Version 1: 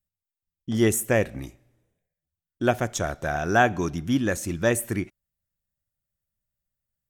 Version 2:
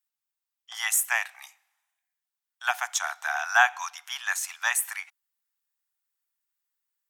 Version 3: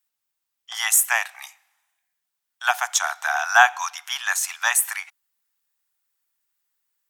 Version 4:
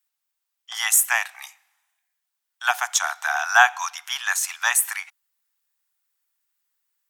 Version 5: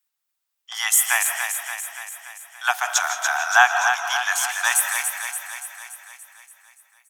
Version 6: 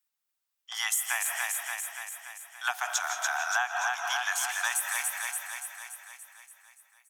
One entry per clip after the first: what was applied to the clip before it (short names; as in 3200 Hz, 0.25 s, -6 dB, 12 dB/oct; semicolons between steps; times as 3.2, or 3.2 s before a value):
steep high-pass 780 Hz 72 dB/oct; gain +3.5 dB
dynamic EQ 2100 Hz, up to -4 dB, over -35 dBFS, Q 1.5; gain +7 dB
HPF 610 Hz 12 dB/oct
feedback echo 0.287 s, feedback 59%, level -6.5 dB; reverb RT60 0.75 s, pre-delay 0.115 s, DRR 8 dB
compressor 6:1, threshold -21 dBFS, peak gain reduction 11.5 dB; gain -4.5 dB